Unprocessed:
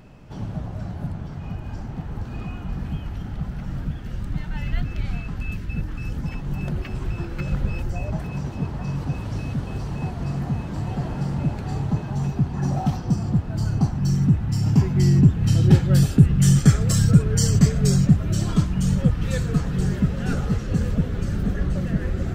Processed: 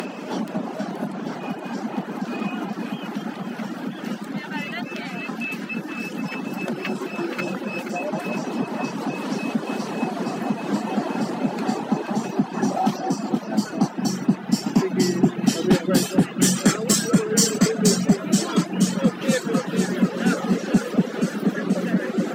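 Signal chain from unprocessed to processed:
upward compression, threshold −20 dBFS
Butterworth high-pass 200 Hz 48 dB per octave
on a send: delay that swaps between a low-pass and a high-pass 239 ms, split 860 Hz, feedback 65%, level −5 dB
on the sum: reverb reduction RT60 0.65 s
sine wavefolder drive 4 dB, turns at −8.5 dBFS

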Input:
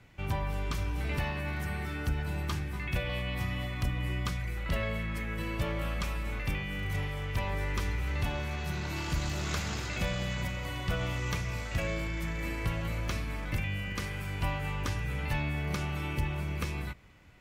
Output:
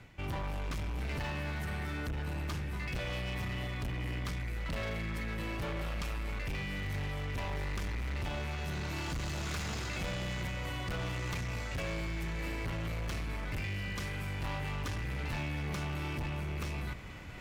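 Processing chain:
high-shelf EQ 10,000 Hz −4 dB
reversed playback
upward compression, threshold −34 dBFS
reversed playback
hard clipping −33.5 dBFS, distortion −9 dB

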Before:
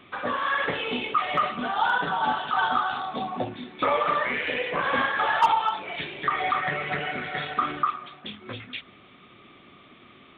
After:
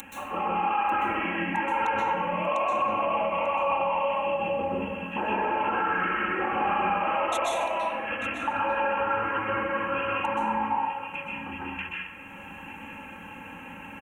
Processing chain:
upward compression, threshold −33 dBFS
wrong playback speed 45 rpm record played at 33 rpm
high shelf with overshoot 3,000 Hz +13.5 dB, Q 3
comb filter 3.7 ms, depth 72%
dense smooth reverb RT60 0.97 s, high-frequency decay 0.55×, pre-delay 115 ms, DRR −4 dB
brickwall limiter −13 dBFS, peak gain reduction 6.5 dB
Butterworth band-reject 4,800 Hz, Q 1.7
tilt shelving filter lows −5 dB
on a send: single-tap delay 893 ms −15 dB
on the sum: level −4 dB

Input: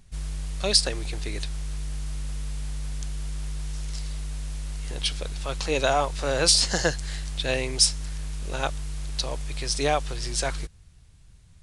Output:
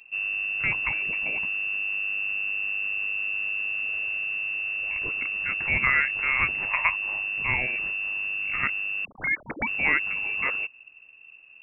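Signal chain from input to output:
0:09.05–0:09.67: three sine waves on the formant tracks
voice inversion scrambler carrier 2,700 Hz

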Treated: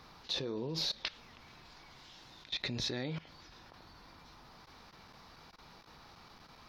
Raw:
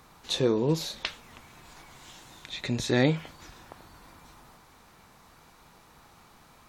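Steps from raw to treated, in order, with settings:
output level in coarse steps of 19 dB
high shelf with overshoot 6,300 Hz −8.5 dB, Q 3

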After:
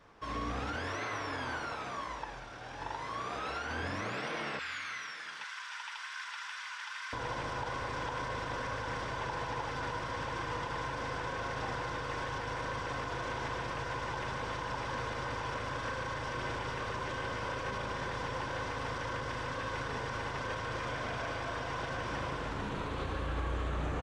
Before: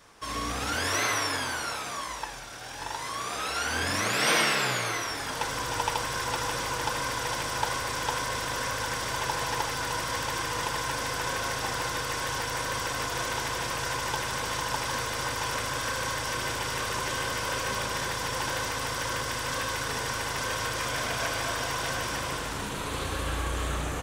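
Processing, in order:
0:04.59–0:07.13: high-pass filter 1,400 Hz 24 dB per octave
brickwall limiter −23 dBFS, peak gain reduction 11 dB
head-to-tape spacing loss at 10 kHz 25 dB
single-tap delay 850 ms −20.5 dB
level −1 dB

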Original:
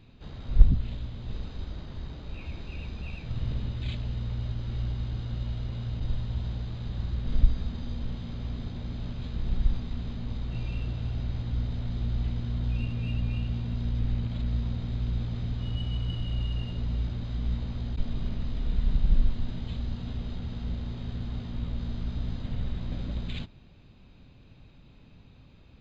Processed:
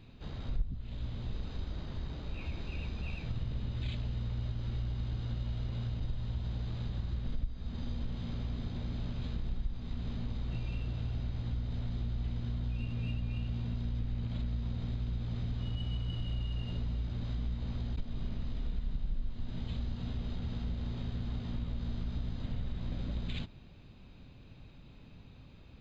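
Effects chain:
downward compressor 4 to 1, threshold −32 dBFS, peak gain reduction 21 dB

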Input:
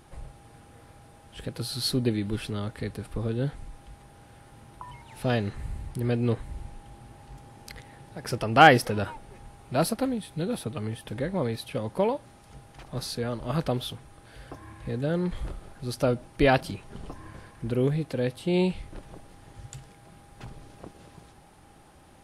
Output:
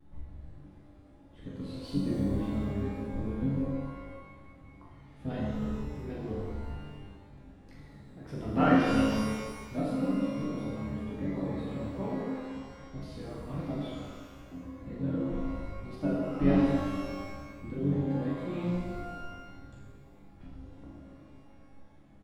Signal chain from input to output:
RIAA equalisation playback
mains-hum notches 60/120/180/240/300/360/420/480/540 Hz
reverb reduction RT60 0.59 s
low-shelf EQ 140 Hz −3.5 dB
resonators tuned to a chord C#2 sus4, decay 0.65 s
hollow resonant body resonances 270/1,900/3,500 Hz, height 12 dB, ringing for 60 ms
pitch vibrato 1.7 Hz 82 cents
pitch-shifted copies added −7 semitones −9 dB
double-tracking delay 41 ms −6 dB
reverb with rising layers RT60 1.5 s, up +12 semitones, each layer −8 dB, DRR 0 dB

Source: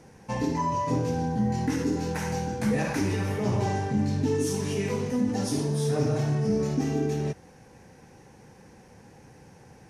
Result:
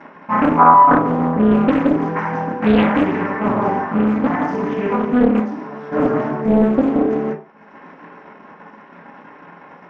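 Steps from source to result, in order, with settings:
0:03.79–0:04.51: lower of the sound and its delayed copy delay 1.1 ms
parametric band 1,200 Hz +8 dB 1.2 octaves
0:05.39–0:05.92: gain into a clipping stage and back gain 35.5 dB
feedback echo with a high-pass in the loop 1,051 ms, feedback 70%, high-pass 740 Hz, level −23 dB
dead-zone distortion −47 dBFS
upward compression, threshold −31 dBFS
convolution reverb RT60 0.45 s, pre-delay 3 ms, DRR −14.5 dB
dynamic equaliser 190 Hz, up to +4 dB, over −20 dBFS, Q 0.77
low-pass filter 2,200 Hz 12 dB per octave
highs frequency-modulated by the lows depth 0.88 ms
level −7 dB

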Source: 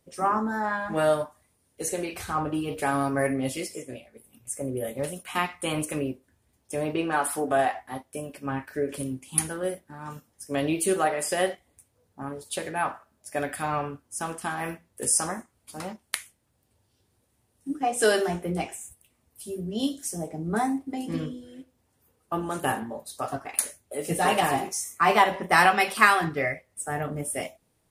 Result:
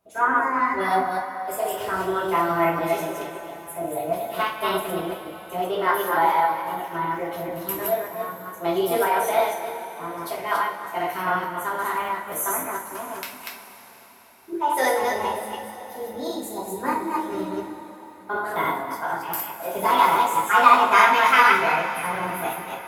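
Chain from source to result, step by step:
delay that plays each chunk backwards 179 ms, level −1 dB
parametric band 830 Hz +9.5 dB 1.8 octaves
speed change +22%
coupled-rooms reverb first 0.35 s, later 4.8 s, from −18 dB, DRR −4 dB
level −9.5 dB

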